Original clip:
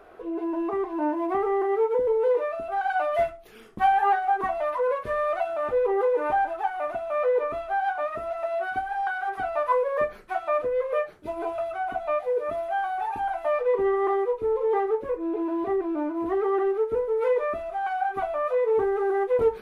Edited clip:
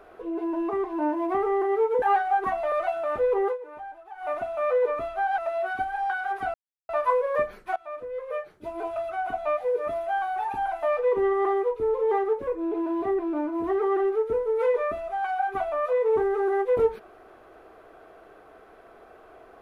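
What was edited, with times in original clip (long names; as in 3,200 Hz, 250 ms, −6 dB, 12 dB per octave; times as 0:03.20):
0:02.02–0:03.99: remove
0:04.69–0:05.25: remove
0:05.98–0:06.81: duck −16 dB, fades 0.13 s
0:07.91–0:08.35: remove
0:09.51: splice in silence 0.35 s
0:10.38–0:11.79: fade in, from −16 dB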